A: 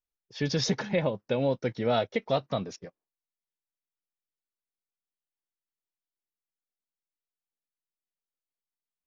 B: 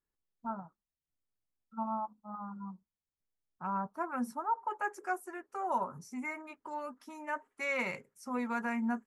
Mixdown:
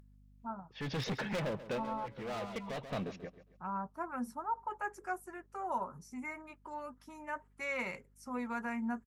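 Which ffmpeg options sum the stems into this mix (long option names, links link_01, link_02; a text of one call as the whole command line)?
ffmpeg -i stem1.wav -i stem2.wav -filter_complex "[0:a]highshelf=frequency=3900:width_type=q:width=1.5:gain=-12.5,volume=31.5dB,asoftclip=hard,volume=-31.5dB,adelay=400,volume=-1.5dB,asplit=2[link_01][link_02];[link_02]volume=-14dB[link_03];[1:a]aeval=exprs='val(0)+0.000794*(sin(2*PI*50*n/s)+sin(2*PI*2*50*n/s)/2+sin(2*PI*3*50*n/s)/3+sin(2*PI*4*50*n/s)/4+sin(2*PI*5*50*n/s)/5)':channel_layout=same,volume=-3.5dB,asplit=2[link_04][link_05];[link_05]apad=whole_len=417195[link_06];[link_01][link_06]sidechaincompress=threshold=-48dB:ratio=10:attack=29:release=488[link_07];[link_03]aecho=0:1:136|272|408|544:1|0.3|0.09|0.027[link_08];[link_07][link_04][link_08]amix=inputs=3:normalize=0,acompressor=mode=upward:threshold=-54dB:ratio=2.5" out.wav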